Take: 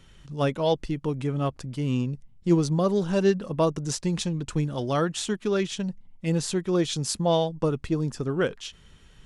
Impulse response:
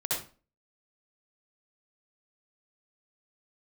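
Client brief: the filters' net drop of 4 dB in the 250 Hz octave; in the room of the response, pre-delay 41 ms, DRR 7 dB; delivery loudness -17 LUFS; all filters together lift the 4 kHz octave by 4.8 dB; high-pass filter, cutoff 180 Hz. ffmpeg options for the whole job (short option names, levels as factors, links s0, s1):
-filter_complex "[0:a]highpass=180,equalizer=f=250:t=o:g=-4,equalizer=f=4000:t=o:g=6,asplit=2[s0][s1];[1:a]atrim=start_sample=2205,adelay=41[s2];[s1][s2]afir=irnorm=-1:irlink=0,volume=0.211[s3];[s0][s3]amix=inputs=2:normalize=0,volume=3.16"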